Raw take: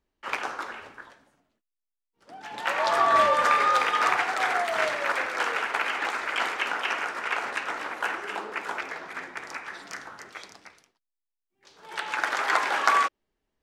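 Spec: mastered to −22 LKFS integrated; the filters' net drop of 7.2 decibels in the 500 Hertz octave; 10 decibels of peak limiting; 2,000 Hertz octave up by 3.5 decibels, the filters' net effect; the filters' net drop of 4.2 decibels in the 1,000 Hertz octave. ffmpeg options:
ffmpeg -i in.wav -af "equalizer=frequency=500:width_type=o:gain=-7.5,equalizer=frequency=1000:width_type=o:gain=-6.5,equalizer=frequency=2000:width_type=o:gain=7,volume=5.5dB,alimiter=limit=-10dB:level=0:latency=1" out.wav

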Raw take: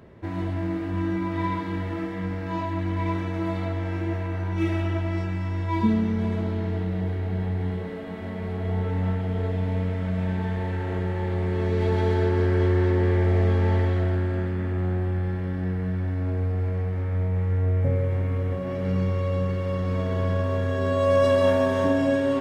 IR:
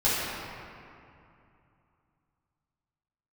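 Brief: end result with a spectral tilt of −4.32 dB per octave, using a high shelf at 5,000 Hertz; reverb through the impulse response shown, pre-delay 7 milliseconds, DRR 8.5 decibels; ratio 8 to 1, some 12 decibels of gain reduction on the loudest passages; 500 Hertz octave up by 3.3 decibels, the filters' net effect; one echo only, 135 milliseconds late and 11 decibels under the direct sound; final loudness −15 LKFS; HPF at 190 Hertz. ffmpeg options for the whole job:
-filter_complex "[0:a]highpass=190,equalizer=frequency=500:width_type=o:gain=4,highshelf=frequency=5000:gain=8.5,acompressor=threshold=-26dB:ratio=8,aecho=1:1:135:0.282,asplit=2[link_01][link_02];[1:a]atrim=start_sample=2205,adelay=7[link_03];[link_02][link_03]afir=irnorm=-1:irlink=0,volume=-23dB[link_04];[link_01][link_04]amix=inputs=2:normalize=0,volume=15dB"

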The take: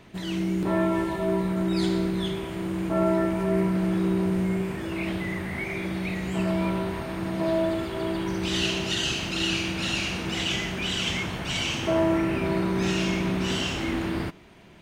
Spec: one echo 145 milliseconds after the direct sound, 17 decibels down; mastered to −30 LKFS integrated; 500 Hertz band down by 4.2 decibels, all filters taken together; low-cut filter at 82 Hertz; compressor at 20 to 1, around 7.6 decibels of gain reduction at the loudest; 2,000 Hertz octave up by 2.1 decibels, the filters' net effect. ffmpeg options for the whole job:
ffmpeg -i in.wav -af "highpass=82,equalizer=frequency=500:width_type=o:gain=-7,equalizer=frequency=2000:width_type=o:gain=3,acompressor=threshold=-29dB:ratio=20,aecho=1:1:145:0.141,volume=2.5dB" out.wav

